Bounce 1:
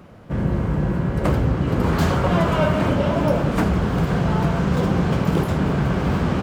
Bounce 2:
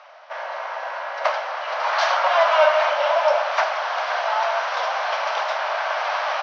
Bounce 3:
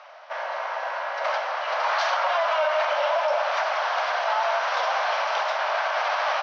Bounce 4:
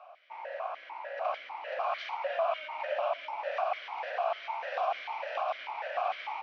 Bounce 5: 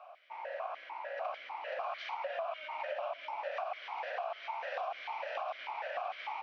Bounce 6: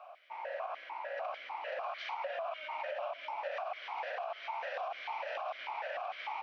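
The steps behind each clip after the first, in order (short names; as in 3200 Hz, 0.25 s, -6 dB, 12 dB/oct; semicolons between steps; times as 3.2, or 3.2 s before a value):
Chebyshev band-pass 610–5900 Hz, order 5; gain +7 dB
limiter -15 dBFS, peak gain reduction 9.5 dB
vowel sequencer 6.7 Hz; gain +1.5 dB
compressor 5:1, threshold -34 dBFS, peak gain reduction 8.5 dB; gain -1 dB
limiter -31 dBFS, peak gain reduction 5 dB; gain +1 dB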